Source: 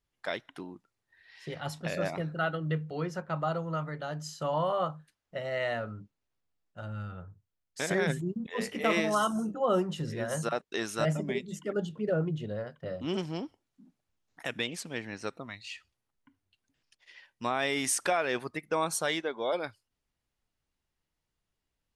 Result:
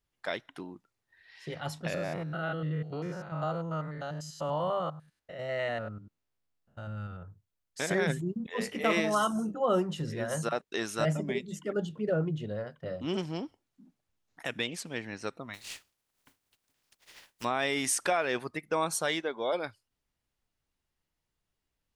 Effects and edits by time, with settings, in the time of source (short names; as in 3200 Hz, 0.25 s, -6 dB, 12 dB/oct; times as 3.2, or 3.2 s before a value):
1.94–7.23 stepped spectrum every 0.1 s
15.53–17.43 spectral contrast lowered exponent 0.37